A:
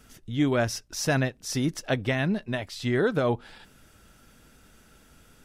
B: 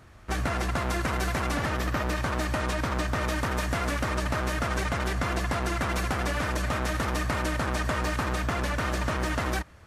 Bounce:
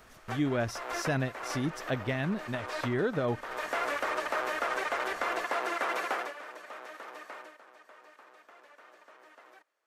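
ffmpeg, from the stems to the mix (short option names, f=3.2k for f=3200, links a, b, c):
-filter_complex "[0:a]highshelf=f=5.3k:g=-9,volume=-5.5dB,asplit=2[a][b];[1:a]highpass=f=400:w=0.5412,highpass=f=400:w=1.3066,acrossover=split=3100[c][d];[d]acompressor=threshold=-49dB:ratio=4:attack=1:release=60[e];[c][e]amix=inputs=2:normalize=0,equalizer=f=10k:w=2.8:g=-3.5,afade=t=out:st=6.14:d=0.2:silence=0.223872,afade=t=out:st=7.34:d=0.24:silence=0.281838[f];[b]apad=whole_len=434925[g];[f][g]sidechaincompress=threshold=-42dB:ratio=8:attack=46:release=342[h];[a][h]amix=inputs=2:normalize=0,highshelf=f=9.8k:g=5.5"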